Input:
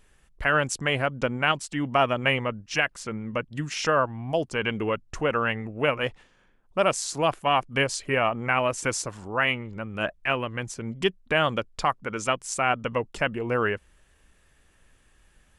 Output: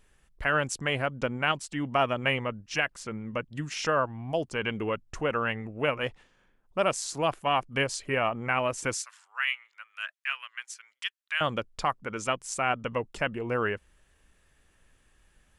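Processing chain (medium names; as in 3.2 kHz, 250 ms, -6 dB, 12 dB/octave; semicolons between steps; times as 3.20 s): 8.95–11.41 s: high-pass 1.4 kHz 24 dB/octave; trim -3.5 dB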